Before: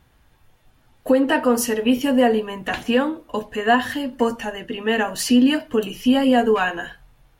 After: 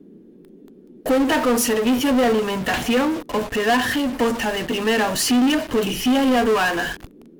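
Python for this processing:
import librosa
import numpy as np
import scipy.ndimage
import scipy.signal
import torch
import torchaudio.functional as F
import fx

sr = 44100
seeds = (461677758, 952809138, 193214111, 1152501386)

p1 = fx.leveller(x, sr, passes=2)
p2 = fx.fuzz(p1, sr, gain_db=41.0, gate_db=-48.0)
p3 = p1 + F.gain(torch.from_numpy(p2), -5.5).numpy()
p4 = fx.dmg_noise_band(p3, sr, seeds[0], low_hz=170.0, high_hz=410.0, level_db=-38.0)
y = F.gain(torch.from_numpy(p4), -8.0).numpy()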